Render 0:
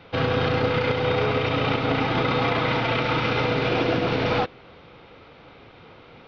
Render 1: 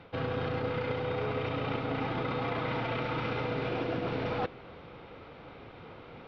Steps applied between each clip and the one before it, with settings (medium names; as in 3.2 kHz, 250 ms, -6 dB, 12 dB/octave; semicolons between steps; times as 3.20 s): treble shelf 3 kHz -9 dB; reverse; compression 6:1, threshold -30 dBFS, peak gain reduction 11 dB; reverse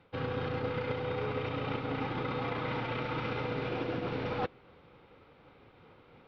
band-stop 670 Hz, Q 12; upward expansion 1.5:1, over -50 dBFS